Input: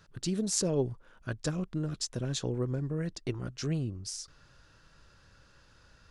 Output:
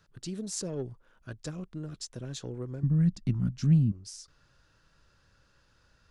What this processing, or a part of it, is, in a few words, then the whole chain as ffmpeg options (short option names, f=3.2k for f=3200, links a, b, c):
one-band saturation: -filter_complex "[0:a]asettb=1/sr,asplit=3[a][b][c];[a]atrim=end=2.834[d];[b]atrim=start=2.83:end=3.92,asetpts=PTS-STARTPTS,afade=t=in:d=0.004:c=qsin,afade=t=out:st=1.086:d=0.004:c=qsin,lowshelf=f=290:t=q:w=3:g=11.5[e];[c]atrim=start=3.916[f];[d][e]acrossfade=d=0.004:c1=hsin:c2=qsin[g];[g][f]acrossfade=d=0.004:c1=qsin:c2=hsin,acrossover=split=420|4500[h][i][j];[i]asoftclip=type=tanh:threshold=-30.5dB[k];[h][k][j]amix=inputs=3:normalize=0,volume=-5.5dB"